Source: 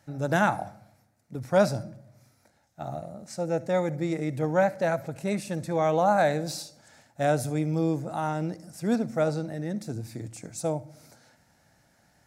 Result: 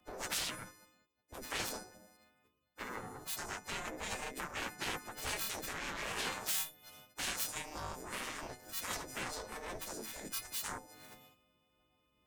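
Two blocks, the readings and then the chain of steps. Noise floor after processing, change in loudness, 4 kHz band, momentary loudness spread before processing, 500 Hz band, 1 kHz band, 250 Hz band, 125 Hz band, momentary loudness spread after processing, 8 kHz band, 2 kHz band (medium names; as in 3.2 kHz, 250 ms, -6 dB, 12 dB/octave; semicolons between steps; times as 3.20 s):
-77 dBFS, -12.0 dB, +2.5 dB, 15 LU, -21.5 dB, -14.5 dB, -21.0 dB, -22.5 dB, 12 LU, +2.0 dB, -6.5 dB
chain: partials quantised in pitch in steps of 3 st; compression 3:1, threshold -40 dBFS, peak gain reduction 18 dB; Chebyshev shaper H 3 -8 dB, 4 -9 dB, 7 -15 dB, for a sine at -24 dBFS; spectral gate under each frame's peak -10 dB weak; three bands expanded up and down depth 70%; trim +4 dB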